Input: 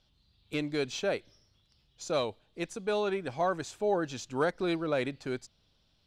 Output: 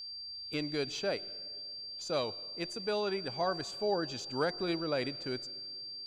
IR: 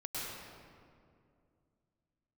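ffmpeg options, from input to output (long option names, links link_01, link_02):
-filter_complex "[0:a]aeval=exprs='val(0)+0.0126*sin(2*PI*4700*n/s)':channel_layout=same,bandreject=frequency=357.4:width_type=h:width=4,bandreject=frequency=714.8:width_type=h:width=4,bandreject=frequency=1072.2:width_type=h:width=4,asplit=2[link_01][link_02];[1:a]atrim=start_sample=2205[link_03];[link_02][link_03]afir=irnorm=-1:irlink=0,volume=-23dB[link_04];[link_01][link_04]amix=inputs=2:normalize=0,volume=-3.5dB"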